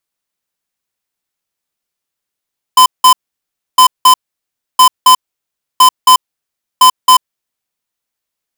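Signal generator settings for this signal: beep pattern square 1.02 kHz, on 0.09 s, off 0.18 s, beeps 2, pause 0.65 s, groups 5, -4 dBFS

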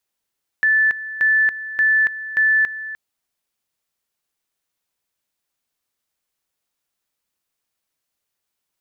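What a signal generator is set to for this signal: two-level tone 1.75 kHz -12.5 dBFS, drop 14.5 dB, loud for 0.28 s, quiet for 0.30 s, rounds 4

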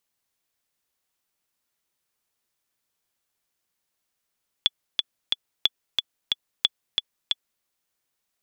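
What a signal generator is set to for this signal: metronome 181 bpm, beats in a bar 3, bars 3, 3.43 kHz, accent 3.5 dB -5 dBFS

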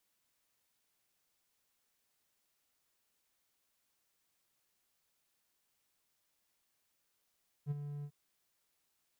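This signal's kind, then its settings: ADSR triangle 145 Hz, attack 49 ms, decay 24 ms, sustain -9 dB, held 0.38 s, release 67 ms -29 dBFS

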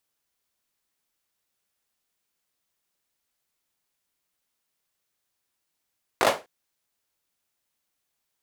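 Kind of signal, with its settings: hand clap length 0.25 s, bursts 4, apart 19 ms, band 600 Hz, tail 0.25 s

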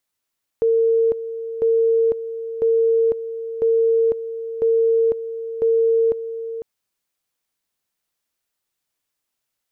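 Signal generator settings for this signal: two-level tone 455 Hz -13.5 dBFS, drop 12 dB, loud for 0.50 s, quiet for 0.50 s, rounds 6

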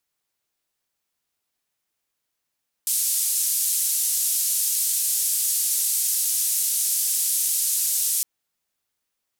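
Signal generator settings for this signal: noise band 7.6–12 kHz, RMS -23 dBFS 5.36 s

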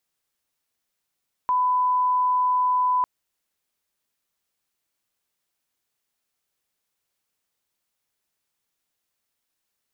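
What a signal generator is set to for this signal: line-up tone -18 dBFS 1.55 s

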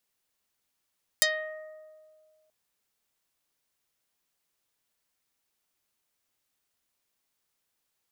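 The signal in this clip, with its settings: plucked string D#5, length 1.28 s, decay 2.01 s, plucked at 0.46, dark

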